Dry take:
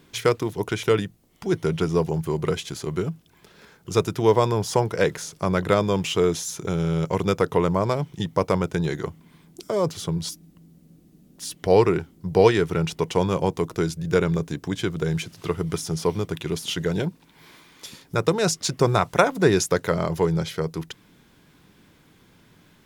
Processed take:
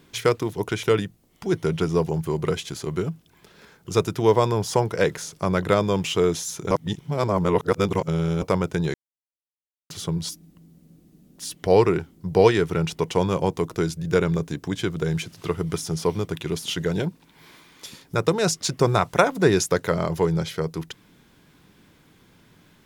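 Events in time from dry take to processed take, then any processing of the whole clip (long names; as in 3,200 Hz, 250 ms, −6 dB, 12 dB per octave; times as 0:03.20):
0:06.71–0:08.42: reverse
0:08.94–0:09.90: silence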